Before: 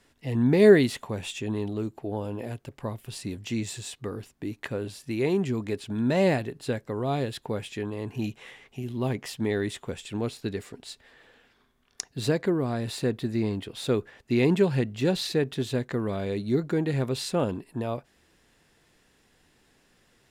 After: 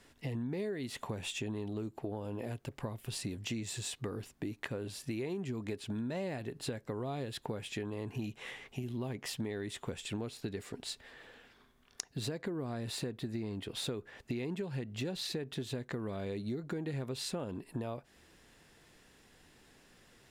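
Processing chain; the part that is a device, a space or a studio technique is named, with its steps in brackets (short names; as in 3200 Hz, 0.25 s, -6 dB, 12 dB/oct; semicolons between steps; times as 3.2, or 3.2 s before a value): serial compression, leveller first (compressor 2.5:1, threshold -26 dBFS, peak gain reduction 10.5 dB; compressor 6:1, threshold -37 dBFS, peak gain reduction 15.5 dB); gain +1.5 dB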